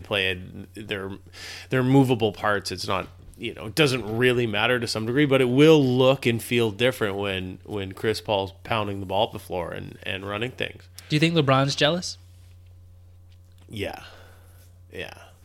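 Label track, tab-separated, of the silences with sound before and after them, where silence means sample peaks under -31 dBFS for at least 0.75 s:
12.130000	13.730000	silence
13.980000	14.950000	silence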